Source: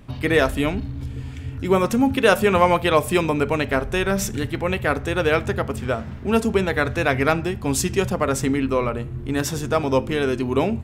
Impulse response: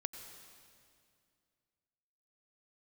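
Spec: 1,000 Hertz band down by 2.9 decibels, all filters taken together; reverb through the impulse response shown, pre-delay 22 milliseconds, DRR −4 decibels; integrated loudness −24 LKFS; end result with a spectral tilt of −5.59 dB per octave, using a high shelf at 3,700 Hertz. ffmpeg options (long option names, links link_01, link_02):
-filter_complex "[0:a]equalizer=frequency=1000:width_type=o:gain=-3.5,highshelf=frequency=3700:gain=-3.5,asplit=2[link_01][link_02];[1:a]atrim=start_sample=2205,adelay=22[link_03];[link_02][link_03]afir=irnorm=-1:irlink=0,volume=5.5dB[link_04];[link_01][link_04]amix=inputs=2:normalize=0,volume=-7.5dB"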